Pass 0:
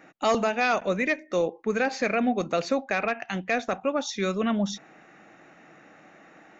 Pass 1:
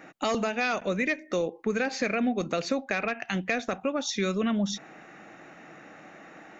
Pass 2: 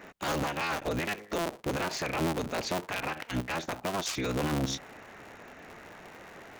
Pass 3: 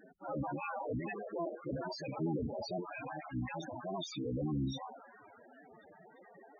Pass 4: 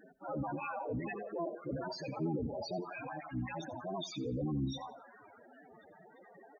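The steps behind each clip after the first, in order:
compression 2:1, threshold -29 dBFS, peak gain reduction 6 dB; dynamic bell 830 Hz, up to -5 dB, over -42 dBFS, Q 0.92; trim +4 dB
cycle switcher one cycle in 3, inverted; peak limiter -23 dBFS, peak gain reduction 10 dB
repeats whose band climbs or falls 358 ms, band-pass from 850 Hz, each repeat 0.7 oct, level -10 dB; transient shaper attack -4 dB, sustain +9 dB; loudest bins only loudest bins 8; trim -3 dB
feedback delay 87 ms, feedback 31%, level -18 dB

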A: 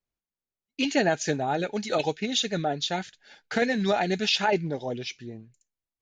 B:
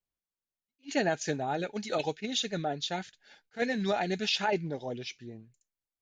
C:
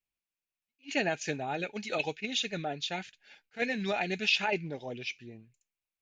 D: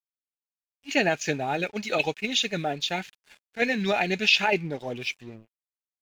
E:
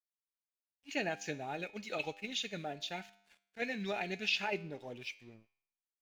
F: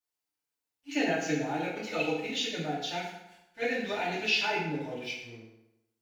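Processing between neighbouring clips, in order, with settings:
attacks held to a fixed rise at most 480 dB/s; trim -5 dB
peaking EQ 2.5 kHz +11.5 dB 0.53 oct; trim -3 dB
crossover distortion -57 dBFS; trim +7 dB
feedback comb 100 Hz, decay 0.7 s, harmonics all, mix 50%; trim -7.5 dB
FDN reverb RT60 0.9 s, low-frequency decay 0.95×, high-frequency decay 0.75×, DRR -10 dB; trim -3 dB

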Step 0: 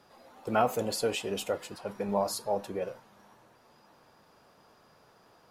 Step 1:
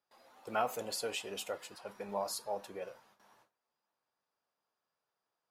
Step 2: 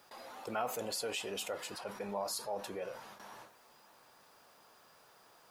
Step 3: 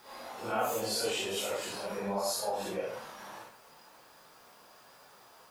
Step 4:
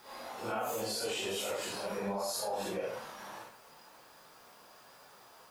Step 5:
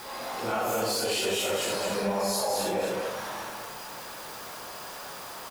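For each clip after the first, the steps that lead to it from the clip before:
bass shelf 420 Hz -12 dB; gate with hold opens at -51 dBFS; trim -4 dB
level flattener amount 50%; trim -4 dB
phase randomisation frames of 200 ms; trim +5.5 dB
peak limiter -26.5 dBFS, peak gain reduction 6.5 dB
jump at every zero crossing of -44 dBFS; delay 214 ms -3.5 dB; trim +5 dB

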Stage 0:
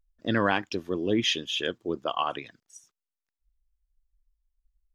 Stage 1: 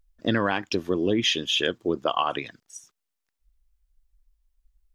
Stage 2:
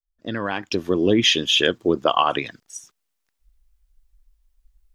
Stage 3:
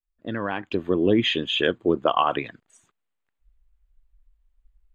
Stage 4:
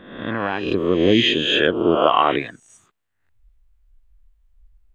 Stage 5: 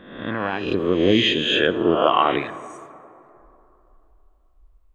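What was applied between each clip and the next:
compression, threshold -26 dBFS, peak gain reduction 8 dB; trim +7 dB
fade-in on the opening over 1.13 s; trim +6 dB
boxcar filter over 8 samples; trim -1.5 dB
reverse spectral sustain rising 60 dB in 0.81 s; trim +2.5 dB
plate-style reverb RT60 3 s, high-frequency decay 0.4×, pre-delay 0 ms, DRR 14 dB; trim -1.5 dB

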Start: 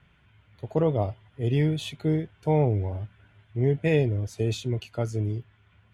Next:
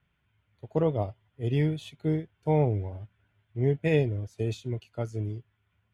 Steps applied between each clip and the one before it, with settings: upward expansion 1.5:1, over -43 dBFS; trim -1 dB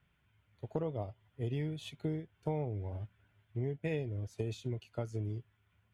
compression 6:1, threshold -33 dBFS, peak gain reduction 13.5 dB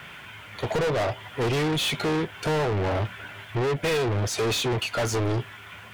overdrive pedal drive 41 dB, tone 5.9 kHz, clips at -20 dBFS; trim +2.5 dB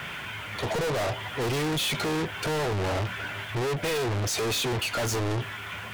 saturation -33.5 dBFS, distortion -10 dB; trim +7 dB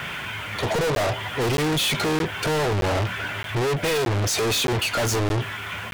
crackling interface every 0.62 s, samples 512, zero, from 0.95 s; trim +5 dB

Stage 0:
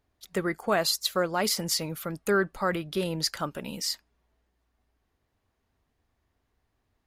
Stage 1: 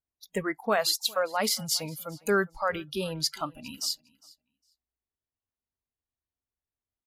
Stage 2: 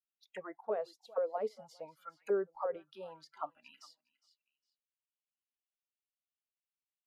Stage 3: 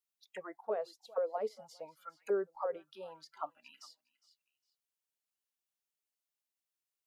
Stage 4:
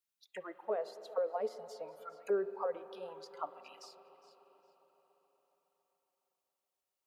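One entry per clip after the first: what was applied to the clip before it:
spectral noise reduction 23 dB; feedback delay 407 ms, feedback 16%, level -24 dB
auto-wah 460–2800 Hz, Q 4.8, down, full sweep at -24 dBFS
tone controls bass -4 dB, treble +4 dB
bucket-brigade echo 139 ms, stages 1024, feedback 82%, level -21 dB; on a send at -13 dB: reverberation RT60 4.8 s, pre-delay 44 ms

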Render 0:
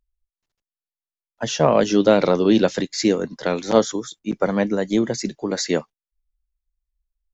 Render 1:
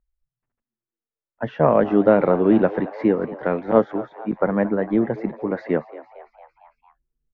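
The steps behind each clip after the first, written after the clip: low-pass 1.9 kHz 24 dB/octave; frequency-shifting echo 227 ms, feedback 59%, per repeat +110 Hz, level -17.5 dB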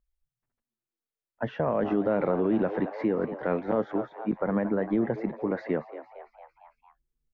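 peak limiter -13.5 dBFS, peak gain reduction 11 dB; trim -3 dB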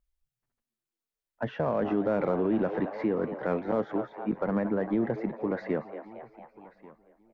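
in parallel at -9.5 dB: saturation -30 dBFS, distortion -6 dB; on the sum: feedback delay 1137 ms, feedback 17%, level -22 dB; trim -2.5 dB

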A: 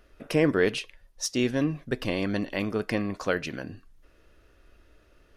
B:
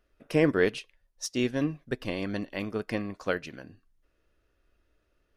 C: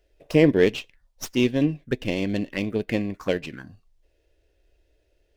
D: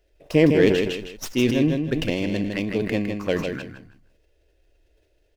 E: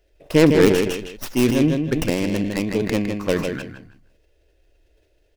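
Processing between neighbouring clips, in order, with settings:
upward expansion 1.5:1, over -45 dBFS
touch-sensitive phaser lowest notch 200 Hz, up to 1.3 kHz, full sweep at -30 dBFS; sliding maximum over 3 samples; trim +7.5 dB
feedback delay 158 ms, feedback 20%, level -6 dB; decay stretcher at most 57 dB/s
tracing distortion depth 0.28 ms; trim +2.5 dB

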